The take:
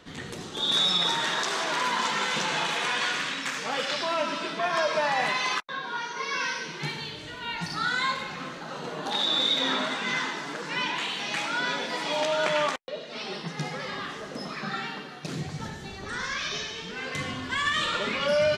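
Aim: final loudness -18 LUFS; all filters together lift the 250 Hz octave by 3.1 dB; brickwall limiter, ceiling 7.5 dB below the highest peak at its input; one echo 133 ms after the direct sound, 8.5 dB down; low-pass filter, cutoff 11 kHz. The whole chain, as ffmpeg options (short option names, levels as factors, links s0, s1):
-af "lowpass=11000,equalizer=f=250:t=o:g=4,alimiter=limit=0.1:level=0:latency=1,aecho=1:1:133:0.376,volume=3.55"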